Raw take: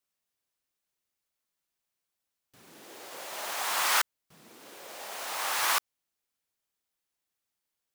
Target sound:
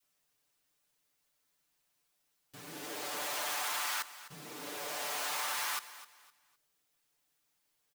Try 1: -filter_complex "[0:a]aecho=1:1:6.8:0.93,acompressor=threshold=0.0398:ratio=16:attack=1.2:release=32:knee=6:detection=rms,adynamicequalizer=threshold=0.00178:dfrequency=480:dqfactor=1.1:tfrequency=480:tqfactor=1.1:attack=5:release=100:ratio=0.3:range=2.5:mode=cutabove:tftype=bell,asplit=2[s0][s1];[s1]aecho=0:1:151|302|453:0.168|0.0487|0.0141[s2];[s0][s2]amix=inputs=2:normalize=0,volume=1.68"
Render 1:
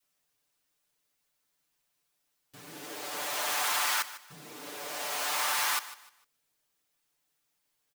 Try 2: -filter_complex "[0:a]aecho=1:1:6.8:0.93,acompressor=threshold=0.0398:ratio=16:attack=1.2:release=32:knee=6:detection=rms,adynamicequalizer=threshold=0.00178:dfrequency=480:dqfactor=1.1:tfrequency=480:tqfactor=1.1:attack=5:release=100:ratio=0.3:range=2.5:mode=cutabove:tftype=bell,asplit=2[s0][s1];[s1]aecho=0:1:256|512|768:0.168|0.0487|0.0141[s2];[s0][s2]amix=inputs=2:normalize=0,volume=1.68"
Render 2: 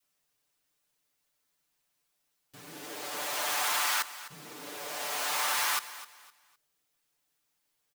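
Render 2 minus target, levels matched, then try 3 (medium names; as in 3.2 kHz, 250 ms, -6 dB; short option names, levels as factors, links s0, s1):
compression: peak gain reduction -6.5 dB
-filter_complex "[0:a]aecho=1:1:6.8:0.93,acompressor=threshold=0.0178:ratio=16:attack=1.2:release=32:knee=6:detection=rms,adynamicequalizer=threshold=0.00178:dfrequency=480:dqfactor=1.1:tfrequency=480:tqfactor=1.1:attack=5:release=100:ratio=0.3:range=2.5:mode=cutabove:tftype=bell,asplit=2[s0][s1];[s1]aecho=0:1:256|512|768:0.168|0.0487|0.0141[s2];[s0][s2]amix=inputs=2:normalize=0,volume=1.68"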